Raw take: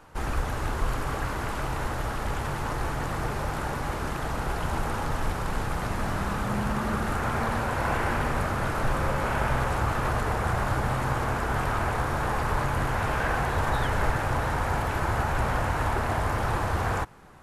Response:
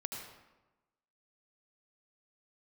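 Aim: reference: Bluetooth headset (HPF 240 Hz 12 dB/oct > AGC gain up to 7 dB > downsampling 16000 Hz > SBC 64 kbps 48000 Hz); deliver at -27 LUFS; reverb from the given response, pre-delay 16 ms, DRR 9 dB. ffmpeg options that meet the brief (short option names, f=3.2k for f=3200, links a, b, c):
-filter_complex "[0:a]asplit=2[a][b];[1:a]atrim=start_sample=2205,adelay=16[c];[b][c]afir=irnorm=-1:irlink=0,volume=-9dB[d];[a][d]amix=inputs=2:normalize=0,highpass=240,dynaudnorm=m=7dB,aresample=16000,aresample=44100,volume=1dB" -ar 48000 -c:a sbc -b:a 64k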